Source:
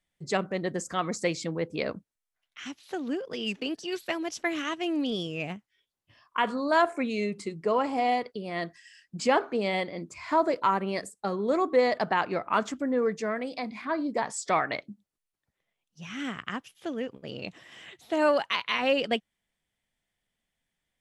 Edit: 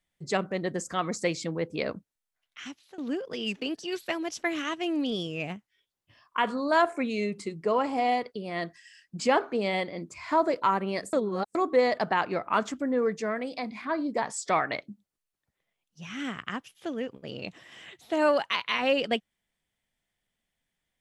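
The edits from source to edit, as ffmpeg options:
-filter_complex "[0:a]asplit=4[s0][s1][s2][s3];[s0]atrim=end=2.98,asetpts=PTS-STARTPTS,afade=t=out:st=2.6:d=0.38:silence=0.105925[s4];[s1]atrim=start=2.98:end=11.132,asetpts=PTS-STARTPTS,afade=t=in:d=0.004:c=hsin:silence=0.105925[s5];[s2]atrim=start=11.128:end=11.552,asetpts=PTS-STARTPTS,areverse[s6];[s3]atrim=start=11.548[s7];[s4][s5]concat=n=2:v=0:a=1[s8];[s8][s6]acrossfade=d=0.004:c1=hsin:c2=hsin[s9];[s9][s7]acrossfade=d=0.004:c1=hsin:c2=hsin"

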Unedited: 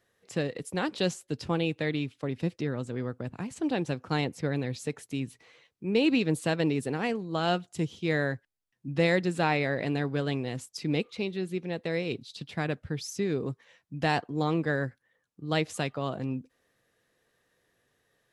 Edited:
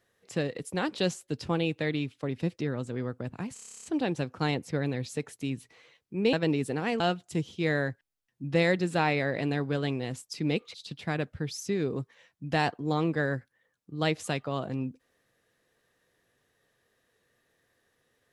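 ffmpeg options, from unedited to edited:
-filter_complex "[0:a]asplit=14[s0][s1][s2][s3][s4][s5][s6][s7][s8][s9][s10][s11][s12][s13];[s0]atrim=end=3.572[s14];[s1]atrim=start=3.538:end=3.572[s15];[s2]atrim=start=3.538:end=3.572[s16];[s3]atrim=start=3.538:end=3.572[s17];[s4]atrim=start=3.538:end=3.572[s18];[s5]atrim=start=3.538:end=3.572[s19];[s6]atrim=start=3.538:end=3.572[s20];[s7]atrim=start=3.538:end=3.572[s21];[s8]atrim=start=3.538:end=3.572[s22];[s9]atrim=start=3.538:end=3.572[s23];[s10]atrim=start=3.538:end=6.032[s24];[s11]atrim=start=6.498:end=7.172[s25];[s12]atrim=start=7.438:end=11.182[s26];[s13]atrim=start=12.238[s27];[s14][s15]acrossfade=d=0.004:c1=hsin:c2=hsin[s28];[s28][s16]acrossfade=d=0.004:c1=hsin:c2=hsin[s29];[s29][s17]acrossfade=d=0.004:c1=hsin:c2=hsin[s30];[s30][s18]acrossfade=d=0.004:c1=hsin:c2=hsin[s31];[s31][s19]acrossfade=d=0.004:c1=hsin:c2=hsin[s32];[s32][s20]acrossfade=d=0.004:c1=hsin:c2=hsin[s33];[s33][s21]acrossfade=d=0.004:c1=hsin:c2=hsin[s34];[s34][s22]acrossfade=d=0.004:c1=hsin:c2=hsin[s35];[s35][s23]acrossfade=d=0.004:c1=hsin:c2=hsin[s36];[s36][s24]acrossfade=d=0.004:c1=hsin:c2=hsin[s37];[s37][s25]acrossfade=d=0.004:c1=hsin:c2=hsin[s38];[s38][s26]acrossfade=d=0.004:c1=hsin:c2=hsin[s39];[s39][s27]acrossfade=d=0.004:c1=hsin:c2=hsin"

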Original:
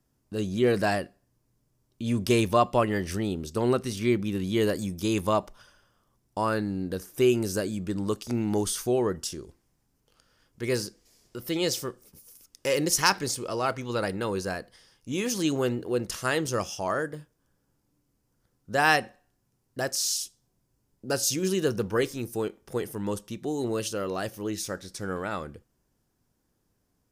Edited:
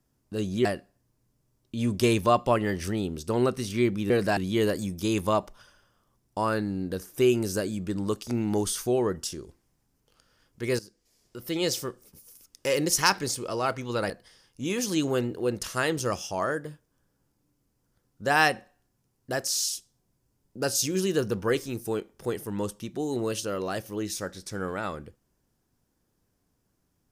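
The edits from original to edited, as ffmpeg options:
-filter_complex "[0:a]asplit=6[s0][s1][s2][s3][s4][s5];[s0]atrim=end=0.652[s6];[s1]atrim=start=0.918:end=4.372[s7];[s2]atrim=start=0.648:end=0.922[s8];[s3]atrim=start=4.368:end=10.79,asetpts=PTS-STARTPTS,afade=t=out:st=6.418:d=0.004:c=hsin:silence=0.158489[s9];[s4]atrim=start=10.79:end=14.102,asetpts=PTS-STARTPTS,afade=t=in:d=0.86:silence=0.158489[s10];[s5]atrim=start=14.578[s11];[s6][s7]acrossfade=d=0.004:c1=hsin:c2=hsin[s12];[s12][s8]acrossfade=d=0.004:c1=hsin:c2=hsin[s13];[s9][s10]concat=n=2:v=0:a=1[s14];[s13][s14]acrossfade=d=0.004:c1=hsin:c2=hsin[s15];[s15][s11]acrossfade=d=0.004:c1=hsin:c2=hsin"

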